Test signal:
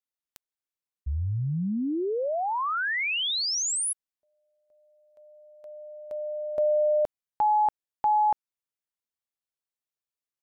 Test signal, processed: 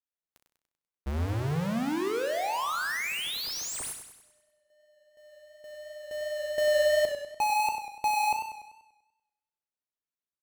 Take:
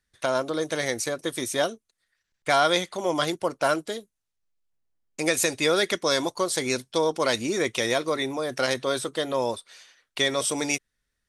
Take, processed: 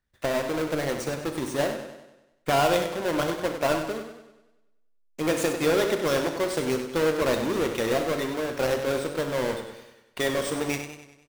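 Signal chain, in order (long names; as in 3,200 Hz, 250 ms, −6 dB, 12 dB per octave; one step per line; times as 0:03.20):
each half-wave held at its own peak
high-shelf EQ 2,700 Hz −7 dB
on a send: ambience of single reflections 13 ms −15.5 dB, 36 ms −12.5 dB, 63 ms −11.5 dB
on the sum: feedback echo with a swinging delay time 97 ms, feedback 51%, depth 68 cents, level −8.5 dB
level −5.5 dB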